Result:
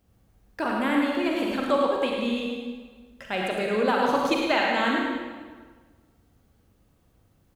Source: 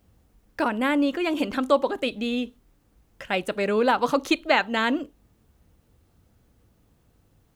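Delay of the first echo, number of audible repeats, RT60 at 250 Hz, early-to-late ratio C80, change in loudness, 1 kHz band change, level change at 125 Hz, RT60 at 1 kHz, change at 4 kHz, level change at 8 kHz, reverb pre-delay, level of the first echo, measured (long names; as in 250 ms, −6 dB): 106 ms, 1, 1.6 s, 0.5 dB, −1.0 dB, 0.0 dB, 0.0 dB, 1.5 s, −0.5 dB, −1.0 dB, 36 ms, −6.0 dB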